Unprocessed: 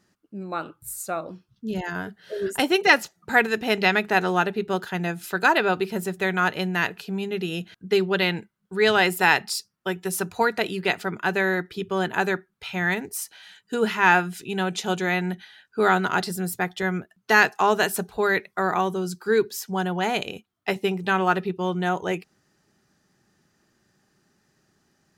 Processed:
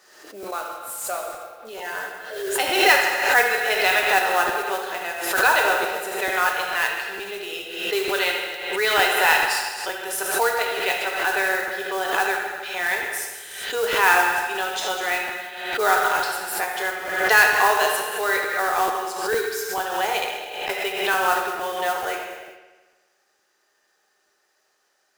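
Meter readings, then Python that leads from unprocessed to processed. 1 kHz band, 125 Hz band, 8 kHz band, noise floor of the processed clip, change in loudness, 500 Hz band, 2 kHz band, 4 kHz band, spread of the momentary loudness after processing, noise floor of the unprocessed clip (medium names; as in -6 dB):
+3.0 dB, under -15 dB, +6.5 dB, -68 dBFS, +2.5 dB, -0.5 dB, +3.5 dB, +4.0 dB, 13 LU, -71 dBFS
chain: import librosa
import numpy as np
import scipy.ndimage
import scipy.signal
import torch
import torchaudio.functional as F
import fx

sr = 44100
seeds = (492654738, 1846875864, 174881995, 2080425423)

p1 = scipy.signal.sosfilt(scipy.signal.butter(4, 470.0, 'highpass', fs=sr, output='sos'), x)
p2 = fx.rev_gated(p1, sr, seeds[0], gate_ms=430, shape='falling', drr_db=1.0)
p3 = fx.mod_noise(p2, sr, seeds[1], snr_db=13)
p4 = p3 + fx.echo_bbd(p3, sr, ms=79, stages=2048, feedback_pct=65, wet_db=-10.0, dry=0)
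p5 = fx.buffer_crackle(p4, sr, first_s=0.42, period_s=0.45, block=512, kind='repeat')
p6 = fx.pre_swell(p5, sr, db_per_s=55.0)
y = p6 * 10.0 ** (-1.0 / 20.0)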